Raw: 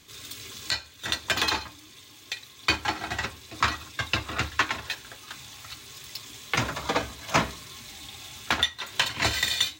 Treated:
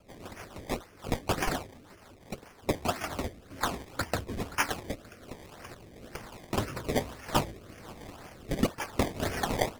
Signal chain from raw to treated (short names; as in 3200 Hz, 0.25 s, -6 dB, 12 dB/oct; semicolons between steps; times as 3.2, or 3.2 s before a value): repeated pitch sweeps -4 st, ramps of 0.228 s; decimation with a swept rate 22×, swing 100% 1.9 Hz; rotary speaker horn 6.7 Hz, later 1.2 Hz, at 1.89